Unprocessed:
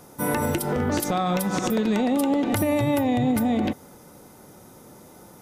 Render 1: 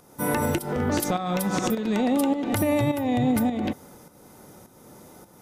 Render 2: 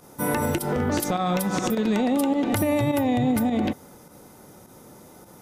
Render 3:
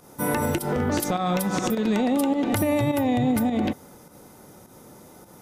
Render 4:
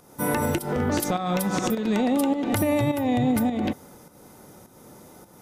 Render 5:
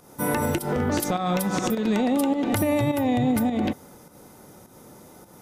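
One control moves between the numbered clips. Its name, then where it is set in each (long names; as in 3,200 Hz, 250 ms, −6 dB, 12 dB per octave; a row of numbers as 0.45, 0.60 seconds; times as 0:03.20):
fake sidechain pumping, release: 427, 69, 107, 290, 163 milliseconds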